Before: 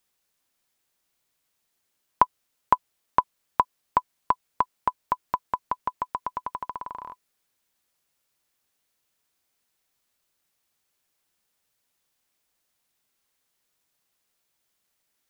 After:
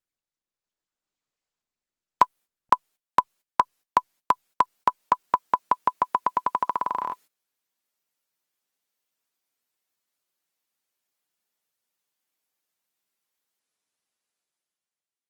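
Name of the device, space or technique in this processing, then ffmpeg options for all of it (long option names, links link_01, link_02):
video call: -af "highpass=160,dynaudnorm=framelen=220:gausssize=9:maxgain=13.5dB,agate=range=-19dB:threshold=-45dB:ratio=16:detection=peak,volume=-1dB" -ar 48000 -c:a libopus -b:a 24k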